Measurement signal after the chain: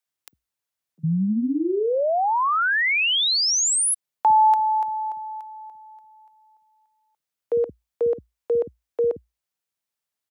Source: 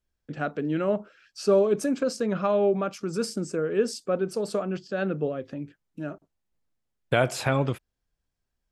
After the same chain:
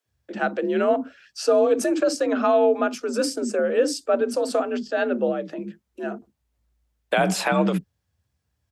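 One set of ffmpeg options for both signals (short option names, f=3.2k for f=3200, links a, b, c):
-filter_complex "[0:a]acrossover=split=250[a][b];[a]adelay=50[c];[c][b]amix=inputs=2:normalize=0,afreqshift=57,alimiter=level_in=15dB:limit=-1dB:release=50:level=0:latency=1,volume=-9dB"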